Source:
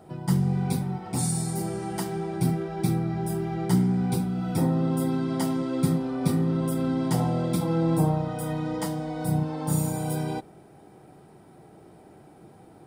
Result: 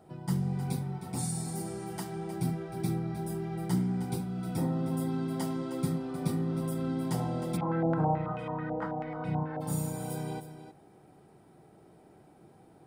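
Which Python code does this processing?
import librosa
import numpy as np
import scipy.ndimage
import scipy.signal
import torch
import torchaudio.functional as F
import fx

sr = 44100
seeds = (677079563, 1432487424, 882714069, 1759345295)

y = x + 10.0 ** (-11.5 / 20.0) * np.pad(x, (int(311 * sr / 1000.0), 0))[:len(x)]
y = fx.filter_held_lowpass(y, sr, hz=9.2, low_hz=710.0, high_hz=2500.0, at=(7.56, 9.6), fade=0.02)
y = F.gain(torch.from_numpy(y), -7.0).numpy()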